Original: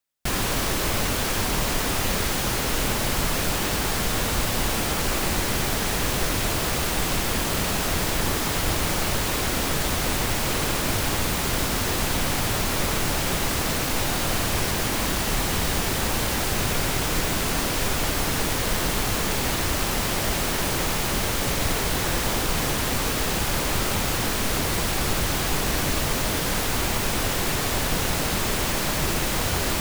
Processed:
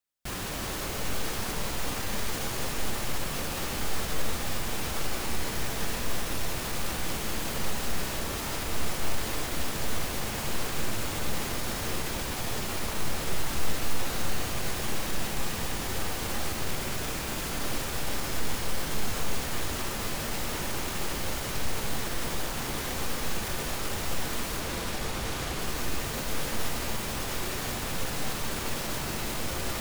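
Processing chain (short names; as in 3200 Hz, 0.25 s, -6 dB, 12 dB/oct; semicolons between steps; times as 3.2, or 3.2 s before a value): 24.6–25.59 high shelf 10000 Hz -9 dB; limiter -20 dBFS, peak gain reduction 10 dB; shimmer reverb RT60 3.1 s, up +7 st, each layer -2 dB, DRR 5 dB; gain -5.5 dB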